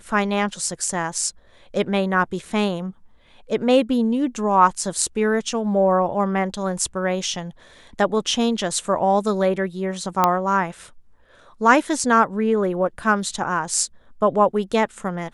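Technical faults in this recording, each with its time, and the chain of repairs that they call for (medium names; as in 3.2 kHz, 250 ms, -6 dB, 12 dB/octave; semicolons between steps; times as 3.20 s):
10.24 s: pop -3 dBFS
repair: de-click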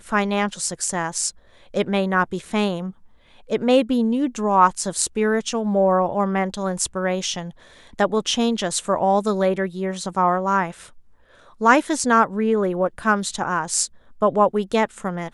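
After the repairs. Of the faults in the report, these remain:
nothing left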